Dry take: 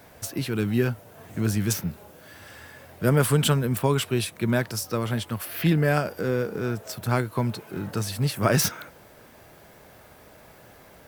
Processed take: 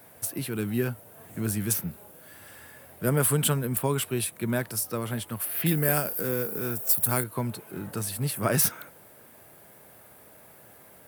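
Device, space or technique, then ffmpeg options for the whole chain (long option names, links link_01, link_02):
budget condenser microphone: -filter_complex "[0:a]highpass=91,highshelf=frequency=7700:width_type=q:width=1.5:gain=8,asettb=1/sr,asplit=3[link_01][link_02][link_03];[link_01]atrim=end=5.664[link_04];[link_02]atrim=start=5.66:end=7.24,asetpts=PTS-STARTPTS,afade=type=in:duration=0.004:curve=qsin,afade=type=out:start_time=1.576:duration=0.004:curve=qsin,aemphasis=mode=production:type=50fm[link_05];[link_03]atrim=start=7.236[link_06];[link_04][link_05]acrossfade=duration=0.004:curve1=hsin:curve2=qsin[link_07];[link_07][link_06]acrossfade=duration=0.004:curve1=qsin:curve2=hsin,volume=-4dB"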